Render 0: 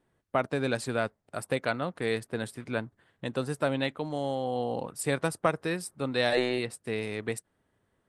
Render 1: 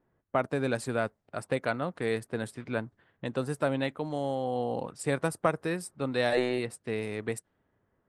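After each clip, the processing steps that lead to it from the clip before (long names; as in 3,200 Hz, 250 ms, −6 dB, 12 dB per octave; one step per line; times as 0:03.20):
low-pass that shuts in the quiet parts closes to 1,700 Hz, open at −28.5 dBFS
dynamic equaliser 3,800 Hz, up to −5 dB, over −46 dBFS, Q 0.84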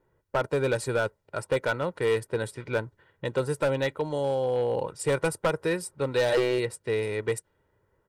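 comb filter 2.1 ms, depth 61%
gain into a clipping stage and back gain 22 dB
level +3 dB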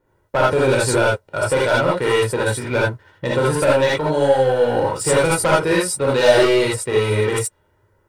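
leveller curve on the samples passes 1
reverb whose tail is shaped and stops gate 100 ms rising, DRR −5 dB
level +4.5 dB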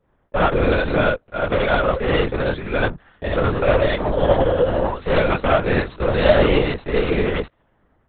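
gain on one half-wave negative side −3 dB
linear-prediction vocoder at 8 kHz whisper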